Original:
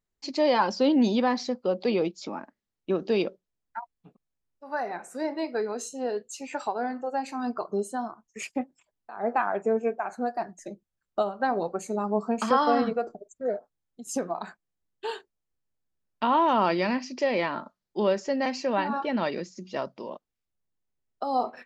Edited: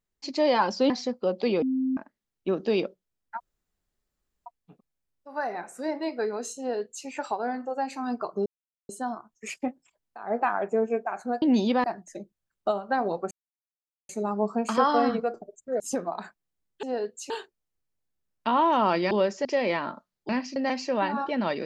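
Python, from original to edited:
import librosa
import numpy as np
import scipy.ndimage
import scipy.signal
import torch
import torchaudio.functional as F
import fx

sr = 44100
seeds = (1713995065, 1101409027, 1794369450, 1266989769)

y = fx.edit(x, sr, fx.move(start_s=0.9, length_s=0.42, to_s=10.35),
    fx.bleep(start_s=2.04, length_s=0.35, hz=261.0, db=-23.0),
    fx.insert_room_tone(at_s=3.82, length_s=1.06),
    fx.duplicate(start_s=5.95, length_s=0.47, to_s=15.06),
    fx.insert_silence(at_s=7.82, length_s=0.43),
    fx.insert_silence(at_s=11.82, length_s=0.78),
    fx.cut(start_s=13.53, length_s=0.5),
    fx.swap(start_s=16.87, length_s=0.27, other_s=17.98, other_length_s=0.34), tone=tone)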